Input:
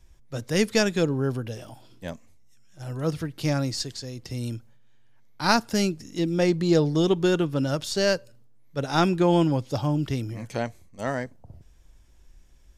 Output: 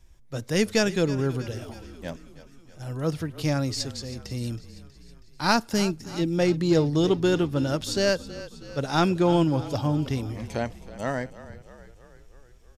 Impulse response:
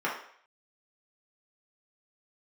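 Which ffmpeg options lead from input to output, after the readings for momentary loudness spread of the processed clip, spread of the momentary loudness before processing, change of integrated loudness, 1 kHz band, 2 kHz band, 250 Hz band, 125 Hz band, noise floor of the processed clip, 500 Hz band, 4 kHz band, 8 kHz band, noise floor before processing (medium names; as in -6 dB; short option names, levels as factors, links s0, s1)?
17 LU, 16 LU, -0.5 dB, -0.5 dB, -0.5 dB, 0.0 dB, 0.0 dB, -52 dBFS, -0.5 dB, -0.5 dB, -0.5 dB, -54 dBFS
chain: -filter_complex "[0:a]asplit=2[s0][s1];[s1]asoftclip=type=tanh:threshold=0.178,volume=0.501[s2];[s0][s2]amix=inputs=2:normalize=0,asplit=7[s3][s4][s5][s6][s7][s8][s9];[s4]adelay=321,afreqshift=-33,volume=0.158[s10];[s5]adelay=642,afreqshift=-66,volume=0.0955[s11];[s6]adelay=963,afreqshift=-99,volume=0.0569[s12];[s7]adelay=1284,afreqshift=-132,volume=0.0343[s13];[s8]adelay=1605,afreqshift=-165,volume=0.0207[s14];[s9]adelay=1926,afreqshift=-198,volume=0.0123[s15];[s3][s10][s11][s12][s13][s14][s15]amix=inputs=7:normalize=0,volume=0.668"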